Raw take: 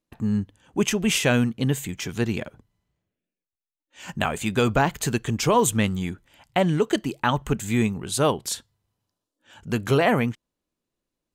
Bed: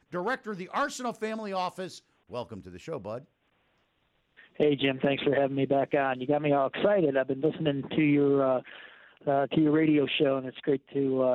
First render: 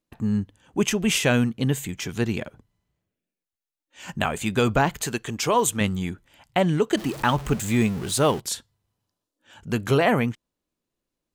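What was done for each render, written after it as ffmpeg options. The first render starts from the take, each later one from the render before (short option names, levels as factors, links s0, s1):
-filter_complex "[0:a]asettb=1/sr,asplit=3[s0][s1][s2];[s0]atrim=end=5.034[s3];[s1]atrim=start=5.03:end=5.81,asetpts=PTS-STARTPTS,afade=t=in:d=0.004:c=qsin,afade=t=out:st=0.776:d=0.004:c=qsin,lowshelf=f=220:g=-10.5[s4];[s2]atrim=start=5.806[s5];[s3][s4]acrossfade=d=0.004:c1=hsin:c2=qsin[s6];[s6][s5]acrossfade=d=0.004:c1=qsin:c2=hsin,asettb=1/sr,asplit=3[s7][s8][s9];[s7]atrim=end=6.974[s10];[s8]atrim=start=6.97:end=8.4,asetpts=PTS-STARTPTS,afade=t=in:d=0.004:c=qsin,afade=t=out:st=1.426:d=0.004:c=qsin,aeval=exprs='val(0)+0.5*0.0251*sgn(val(0))':c=same[s11];[s9]atrim=start=8.396[s12];[s10][s11]acrossfade=d=0.004:c1=hsin:c2=qsin[s13];[s13][s12]acrossfade=d=0.004:c1=qsin:c2=hsin"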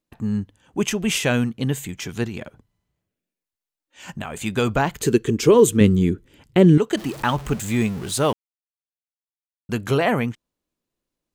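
-filter_complex "[0:a]asettb=1/sr,asplit=3[s0][s1][s2];[s0]atrim=end=2.264[s3];[s1]atrim=start=2.26:end=4.41,asetpts=PTS-STARTPTS,afade=t=in:d=0.004:c=qsin,afade=t=out:st=2.146:d=0.004:c=qsin,acompressor=threshold=0.0501:ratio=6:attack=3.2:release=140:knee=1:detection=peak[s4];[s2]atrim=start=4.406[s5];[s3][s4]acrossfade=d=0.004:c1=hsin:c2=qsin[s6];[s6][s5]acrossfade=d=0.004:c1=qsin:c2=hsin,asettb=1/sr,asplit=3[s7][s8][s9];[s7]atrim=end=5.014[s10];[s8]atrim=start=5.01:end=6.78,asetpts=PTS-STARTPTS,afade=t=in:d=0.004:c=qsin,afade=t=out:st=1.766:d=0.004:c=qsin,lowshelf=f=540:t=q:w=3:g=8.5[s11];[s9]atrim=start=6.776[s12];[s10][s11]acrossfade=d=0.004:c1=hsin:c2=qsin[s13];[s13][s12]acrossfade=d=0.004:c1=qsin:c2=hsin,asplit=3[s14][s15][s16];[s14]atrim=end=8.33,asetpts=PTS-STARTPTS,afade=t=out:st=8.326:d=0.004:c=hsin[s17];[s15]atrim=start=8.33:end=9.69,asetpts=PTS-STARTPTS,volume=0[s18];[s16]atrim=start=9.69,asetpts=PTS-STARTPTS,afade=t=in:d=0.004:c=hsin[s19];[s17][s18][s19]concat=n=3:v=0:a=1"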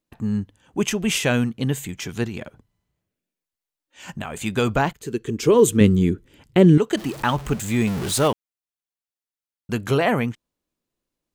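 -filter_complex "[0:a]asettb=1/sr,asplit=3[s0][s1][s2];[s0]atrim=end=7.874[s3];[s1]atrim=start=7.87:end=8.28,asetpts=PTS-STARTPTS,afade=t=in:d=0.004:c=qsin,afade=t=out:st=0.406:d=0.004:c=qsin,aeval=exprs='val(0)+0.5*0.0398*sgn(val(0))':c=same[s4];[s2]atrim=start=8.276[s5];[s3][s4]acrossfade=d=0.004:c1=hsin:c2=qsin[s6];[s6][s5]acrossfade=d=0.004:c1=qsin:c2=hsin,asplit=2[s7][s8];[s7]atrim=end=4.93,asetpts=PTS-STARTPTS,afade=t=out:st=4.926:d=0.004:c=hsin:silence=0.112202[s9];[s8]atrim=start=4.93,asetpts=PTS-STARTPTS,afade=t=in:d=0.78:silence=0.112202[s10];[s9][s10]concat=n=2:v=0:a=1"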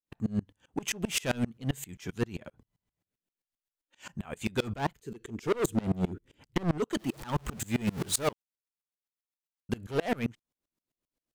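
-af "asoftclip=type=hard:threshold=0.112,aeval=exprs='val(0)*pow(10,-28*if(lt(mod(-7.6*n/s,1),2*abs(-7.6)/1000),1-mod(-7.6*n/s,1)/(2*abs(-7.6)/1000),(mod(-7.6*n/s,1)-2*abs(-7.6)/1000)/(1-2*abs(-7.6)/1000))/20)':c=same"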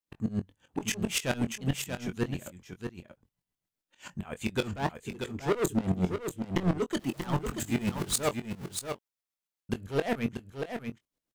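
-filter_complex "[0:a]asplit=2[s0][s1];[s1]adelay=22,volume=0.316[s2];[s0][s2]amix=inputs=2:normalize=0,aecho=1:1:635:0.447"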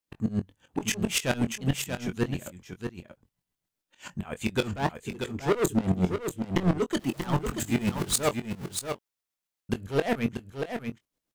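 -af "volume=1.41"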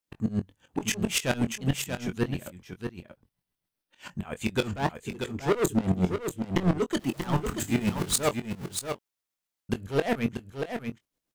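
-filter_complex "[0:a]asettb=1/sr,asplit=3[s0][s1][s2];[s0]atrim=end=2.184[s3];[s1]atrim=start=2.18:end=4.11,asetpts=PTS-STARTPTS,afade=t=in:d=0.004:c=qsin,afade=t=out:st=1.926:d=0.004:c=qsin,equalizer=f=7000:w=5.3:g=-9[s4];[s2]atrim=start=4.106[s5];[s3][s4]acrossfade=d=0.004:c1=hsin:c2=qsin[s6];[s6][s5]acrossfade=d=0.004:c1=qsin:c2=hsin,asettb=1/sr,asplit=3[s7][s8][s9];[s7]atrim=end=7.234[s10];[s8]atrim=start=7.23:end=8.18,asetpts=PTS-STARTPTS,afade=t=in:d=0.004:c=qsin,afade=t=out:st=0.946:d=0.004:c=qsin,asplit=2[s11][s12];[s12]adelay=33,volume=0.224[s13];[s11][s13]amix=inputs=2:normalize=0,atrim=end_sample=41895[s14];[s9]atrim=start=8.176[s15];[s10][s14]acrossfade=d=0.004:c1=hsin:c2=qsin[s16];[s16][s15]acrossfade=d=0.004:c1=qsin:c2=hsin"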